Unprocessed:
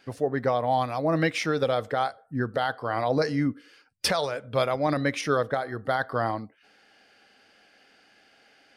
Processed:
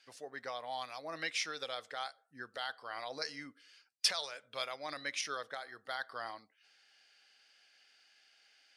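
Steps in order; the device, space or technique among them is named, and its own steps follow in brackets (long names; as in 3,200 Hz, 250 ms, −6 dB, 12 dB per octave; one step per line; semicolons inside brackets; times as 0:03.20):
piezo pickup straight into a mixer (low-pass filter 6,000 Hz 12 dB per octave; first difference)
level +2.5 dB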